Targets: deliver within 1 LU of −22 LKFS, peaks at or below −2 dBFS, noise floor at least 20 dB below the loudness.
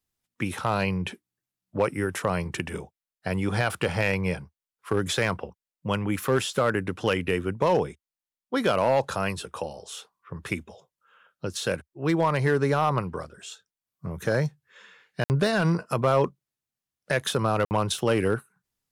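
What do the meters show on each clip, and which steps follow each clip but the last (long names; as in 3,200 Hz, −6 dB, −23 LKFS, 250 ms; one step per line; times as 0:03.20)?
share of clipped samples 0.4%; peaks flattened at −14.5 dBFS; number of dropouts 2; longest dropout 59 ms; integrated loudness −26.5 LKFS; sample peak −14.5 dBFS; target loudness −22.0 LKFS
→ clipped peaks rebuilt −14.5 dBFS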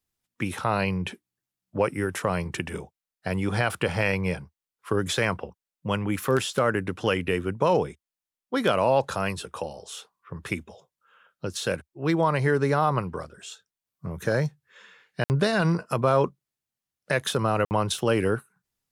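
share of clipped samples 0.0%; number of dropouts 2; longest dropout 59 ms
→ repair the gap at 0:15.24/0:17.65, 59 ms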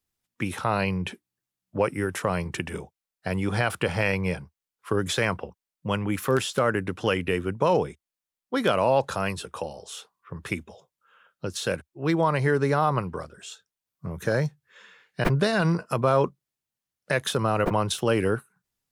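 number of dropouts 0; integrated loudness −26.5 LKFS; sample peak −8.5 dBFS; target loudness −22.0 LKFS
→ level +4.5 dB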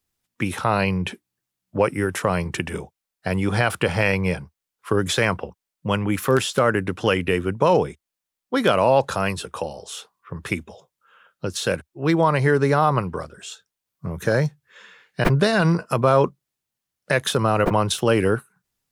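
integrated loudness −22.0 LKFS; sample peak −4.0 dBFS; background noise floor −85 dBFS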